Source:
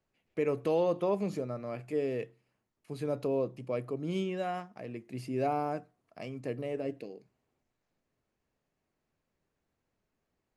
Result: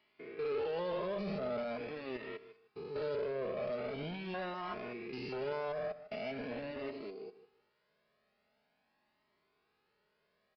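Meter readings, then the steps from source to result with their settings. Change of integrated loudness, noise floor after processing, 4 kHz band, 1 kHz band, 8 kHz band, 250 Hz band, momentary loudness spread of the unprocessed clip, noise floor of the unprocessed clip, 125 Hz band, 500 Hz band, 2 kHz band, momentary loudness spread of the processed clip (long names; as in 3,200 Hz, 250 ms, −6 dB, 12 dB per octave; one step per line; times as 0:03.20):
−5.5 dB, −79 dBFS, +1.0 dB, −6.0 dB, can't be measured, −7.5 dB, 14 LU, −84 dBFS, −9.0 dB, −4.5 dB, +1.5 dB, 10 LU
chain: spectrum averaged block by block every 200 ms
high-pass filter 330 Hz 6 dB per octave
low-shelf EQ 440 Hz −4.5 dB
comb filter 4.8 ms, depth 50%
brickwall limiter −37 dBFS, peak gain reduction 11.5 dB
harmonic generator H 5 −18 dB, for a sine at −37 dBFS
repeating echo 153 ms, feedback 20%, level −15 dB
downsampling to 11,025 Hz
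flanger whose copies keep moving one way rising 0.43 Hz
level +10.5 dB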